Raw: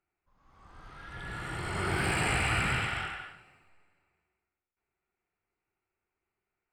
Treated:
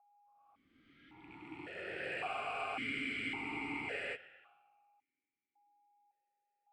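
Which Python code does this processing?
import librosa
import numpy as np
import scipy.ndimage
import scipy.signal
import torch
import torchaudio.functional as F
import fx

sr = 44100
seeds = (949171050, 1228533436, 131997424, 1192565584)

p1 = fx.rattle_buzz(x, sr, strikes_db=-38.0, level_db=-30.0)
p2 = fx.notch(p1, sr, hz=820.0, q=14.0)
p3 = p2 + 10.0 ** (-61.0 / 20.0) * np.sin(2.0 * np.pi * 820.0 * np.arange(len(p2)) / sr)
p4 = p3 + fx.echo_single(p3, sr, ms=1197, db=-10.5, dry=0)
p5 = fx.rev_gated(p4, sr, seeds[0], gate_ms=170, shape='rising', drr_db=9.0)
p6 = fx.spec_freeze(p5, sr, seeds[1], at_s=2.31, hold_s=1.84)
p7 = fx.vowel_held(p6, sr, hz=1.8)
y = p7 * 10.0 ** (1.5 / 20.0)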